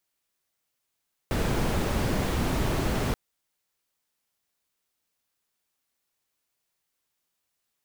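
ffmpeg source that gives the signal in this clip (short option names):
-f lavfi -i "anoisesrc=c=brown:a=0.248:d=1.83:r=44100:seed=1"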